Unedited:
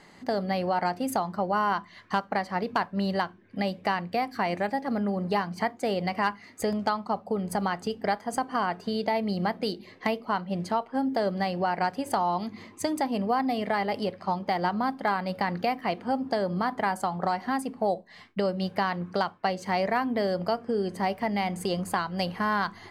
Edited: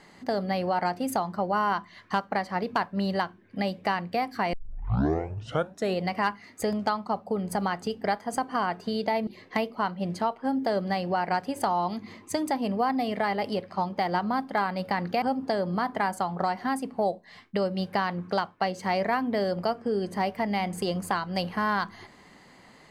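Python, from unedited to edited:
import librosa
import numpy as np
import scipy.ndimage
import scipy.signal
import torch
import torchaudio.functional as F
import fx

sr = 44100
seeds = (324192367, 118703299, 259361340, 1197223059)

y = fx.edit(x, sr, fx.tape_start(start_s=4.53, length_s=1.48),
    fx.cut(start_s=9.27, length_s=0.5),
    fx.cut(start_s=15.72, length_s=0.33), tone=tone)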